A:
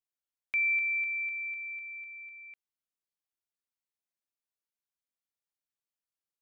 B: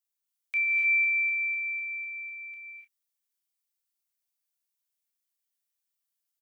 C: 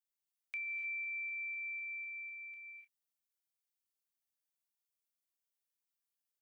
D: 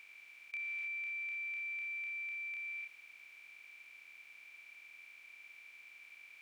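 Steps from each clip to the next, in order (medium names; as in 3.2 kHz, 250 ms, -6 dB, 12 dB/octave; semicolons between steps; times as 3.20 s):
tilt EQ +3.5 dB/octave; early reflections 15 ms -11.5 dB, 29 ms -8.5 dB; gated-style reverb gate 320 ms rising, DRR 1 dB; trim -5.5 dB
compression 5:1, threshold -33 dBFS, peak gain reduction 10 dB; trim -7 dB
spectral levelling over time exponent 0.2; peaking EQ 1.9 kHz -3 dB 0.22 oct; trim -1.5 dB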